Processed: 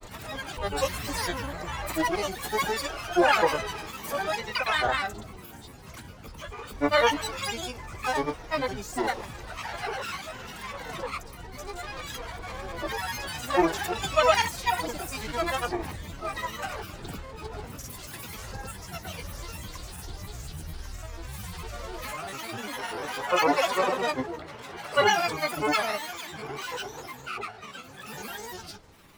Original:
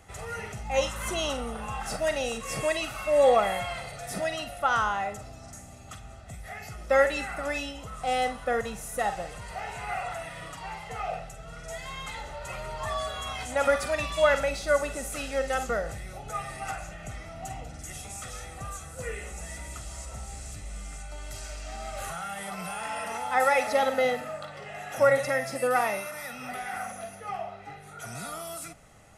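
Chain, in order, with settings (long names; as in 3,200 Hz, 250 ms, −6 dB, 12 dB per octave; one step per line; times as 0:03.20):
pitch-shifted copies added +12 semitones −4 dB
granular cloud, pitch spread up and down by 12 semitones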